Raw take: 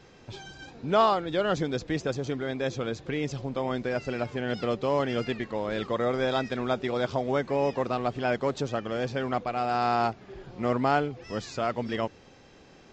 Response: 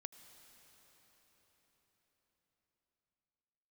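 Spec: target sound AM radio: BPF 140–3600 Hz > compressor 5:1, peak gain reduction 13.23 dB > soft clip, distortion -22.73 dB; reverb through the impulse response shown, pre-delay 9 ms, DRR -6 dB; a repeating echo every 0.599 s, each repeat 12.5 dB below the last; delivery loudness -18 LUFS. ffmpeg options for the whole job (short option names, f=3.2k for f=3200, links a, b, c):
-filter_complex "[0:a]aecho=1:1:599|1198|1797:0.237|0.0569|0.0137,asplit=2[a][b];[1:a]atrim=start_sample=2205,adelay=9[c];[b][c]afir=irnorm=-1:irlink=0,volume=11dB[d];[a][d]amix=inputs=2:normalize=0,highpass=140,lowpass=3.6k,acompressor=threshold=-23dB:ratio=5,asoftclip=threshold=-15.5dB,volume=10.5dB"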